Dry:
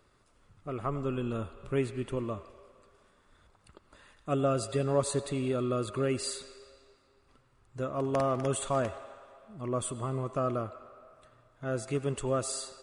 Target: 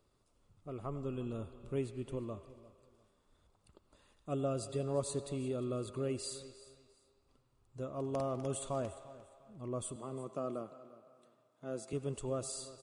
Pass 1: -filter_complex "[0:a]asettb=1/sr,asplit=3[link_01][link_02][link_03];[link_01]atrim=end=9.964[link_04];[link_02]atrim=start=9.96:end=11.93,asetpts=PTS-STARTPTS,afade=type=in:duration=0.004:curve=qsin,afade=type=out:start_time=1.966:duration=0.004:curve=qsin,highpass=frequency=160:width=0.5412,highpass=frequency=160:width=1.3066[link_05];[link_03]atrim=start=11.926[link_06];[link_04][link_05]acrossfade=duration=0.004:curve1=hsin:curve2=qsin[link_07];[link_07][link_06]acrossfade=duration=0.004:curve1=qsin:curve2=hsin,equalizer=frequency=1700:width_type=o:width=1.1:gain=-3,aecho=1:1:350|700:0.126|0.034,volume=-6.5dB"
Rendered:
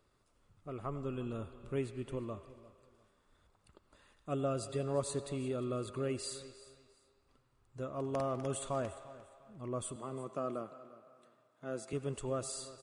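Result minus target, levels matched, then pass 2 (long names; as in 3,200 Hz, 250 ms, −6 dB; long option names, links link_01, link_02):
2,000 Hz band +4.5 dB
-filter_complex "[0:a]asettb=1/sr,asplit=3[link_01][link_02][link_03];[link_01]atrim=end=9.964[link_04];[link_02]atrim=start=9.96:end=11.93,asetpts=PTS-STARTPTS,afade=type=in:duration=0.004:curve=qsin,afade=type=out:start_time=1.966:duration=0.004:curve=qsin,highpass=frequency=160:width=0.5412,highpass=frequency=160:width=1.3066[link_05];[link_03]atrim=start=11.926[link_06];[link_04][link_05]acrossfade=duration=0.004:curve1=hsin:curve2=qsin[link_07];[link_07][link_06]acrossfade=duration=0.004:curve1=qsin:curve2=hsin,equalizer=frequency=1700:width_type=o:width=1.1:gain=-10,aecho=1:1:350|700:0.126|0.034,volume=-6.5dB"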